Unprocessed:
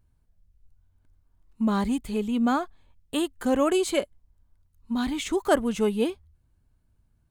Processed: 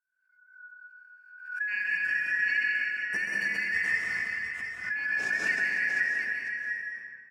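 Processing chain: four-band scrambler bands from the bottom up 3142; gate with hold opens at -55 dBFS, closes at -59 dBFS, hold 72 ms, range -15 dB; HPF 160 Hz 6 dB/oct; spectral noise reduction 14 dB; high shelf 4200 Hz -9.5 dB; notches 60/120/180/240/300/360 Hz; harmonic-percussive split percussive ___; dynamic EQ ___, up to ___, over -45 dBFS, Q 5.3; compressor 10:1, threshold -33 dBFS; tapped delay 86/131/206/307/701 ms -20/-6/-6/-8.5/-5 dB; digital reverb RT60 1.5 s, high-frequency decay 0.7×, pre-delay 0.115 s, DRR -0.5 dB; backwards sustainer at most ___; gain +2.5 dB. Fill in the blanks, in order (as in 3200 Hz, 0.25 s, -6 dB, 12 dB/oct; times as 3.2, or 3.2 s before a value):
-11 dB, 2400 Hz, +6 dB, 82 dB/s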